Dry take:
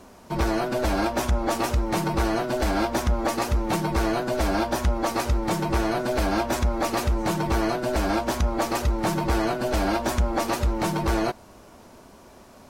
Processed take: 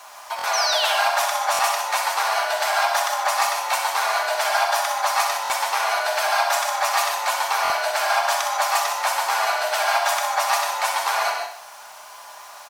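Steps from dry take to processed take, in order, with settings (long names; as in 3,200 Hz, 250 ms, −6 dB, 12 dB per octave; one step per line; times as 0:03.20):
Butterworth high-pass 730 Hz 36 dB per octave
comb filter 4.9 ms, depth 41%
in parallel at −1 dB: downward compressor 10 to 1, threshold −38 dBFS, peak gain reduction 15.5 dB
on the sum: sound drawn into the spectrogram fall, 0:00.53–0:00.86, 2,600–6,300 Hz −30 dBFS
bit-depth reduction 10 bits, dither none
repeating echo 63 ms, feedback 48%, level −7.5 dB
on a send at −4 dB: convolution reverb, pre-delay 3 ms
on the sum: buffer that repeats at 0:00.37/0:01.52/0:05.43/0:07.63, samples 1,024, times 2
level +4.5 dB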